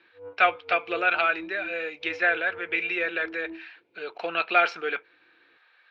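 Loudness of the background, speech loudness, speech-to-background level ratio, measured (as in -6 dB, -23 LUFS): -44.5 LUFS, -26.0 LUFS, 18.5 dB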